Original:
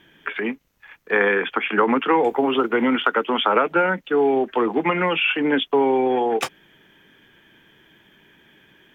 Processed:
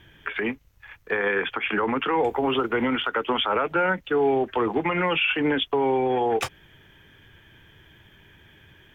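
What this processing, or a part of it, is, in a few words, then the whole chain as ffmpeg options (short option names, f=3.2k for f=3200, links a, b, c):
car stereo with a boomy subwoofer: -af "lowshelf=f=140:t=q:w=1.5:g=12.5,alimiter=limit=-14dB:level=0:latency=1:release=97"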